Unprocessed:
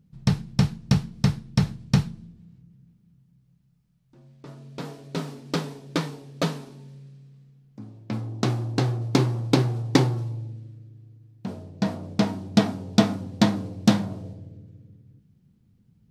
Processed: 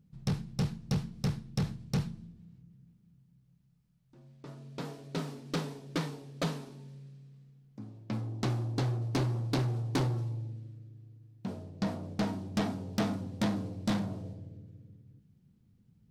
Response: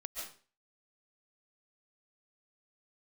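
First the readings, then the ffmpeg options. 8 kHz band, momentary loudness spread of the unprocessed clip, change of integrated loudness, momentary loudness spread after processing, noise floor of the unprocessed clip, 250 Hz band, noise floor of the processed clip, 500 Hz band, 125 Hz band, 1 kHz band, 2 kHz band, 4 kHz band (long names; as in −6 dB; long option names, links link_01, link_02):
−9.0 dB, 19 LU, −9.5 dB, 18 LU, −63 dBFS, −10.0 dB, −67 dBFS, −9.0 dB, −8.0 dB, −8.5 dB, −8.5 dB, −10.0 dB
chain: -af "asoftclip=type=tanh:threshold=-20.5dB,volume=-4dB"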